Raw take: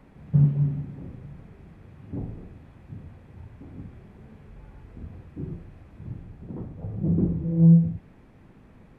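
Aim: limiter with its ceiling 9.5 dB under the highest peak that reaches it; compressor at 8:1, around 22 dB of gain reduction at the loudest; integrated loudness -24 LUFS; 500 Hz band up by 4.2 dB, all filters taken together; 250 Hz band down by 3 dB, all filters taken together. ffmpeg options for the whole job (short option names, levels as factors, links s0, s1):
-af "equalizer=f=250:t=o:g=-8.5,equalizer=f=500:t=o:g=8.5,acompressor=threshold=0.0126:ratio=8,volume=15.8,alimiter=limit=0.188:level=0:latency=1"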